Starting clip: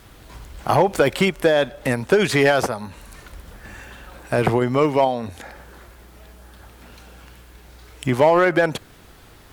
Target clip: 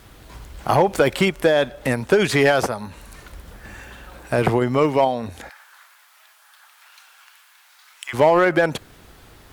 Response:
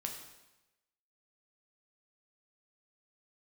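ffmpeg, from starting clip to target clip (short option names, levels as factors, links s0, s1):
-filter_complex "[0:a]asplit=3[s0][s1][s2];[s0]afade=t=out:st=5.48:d=0.02[s3];[s1]highpass=f=1000:w=0.5412,highpass=f=1000:w=1.3066,afade=t=in:st=5.48:d=0.02,afade=t=out:st=8.13:d=0.02[s4];[s2]afade=t=in:st=8.13:d=0.02[s5];[s3][s4][s5]amix=inputs=3:normalize=0"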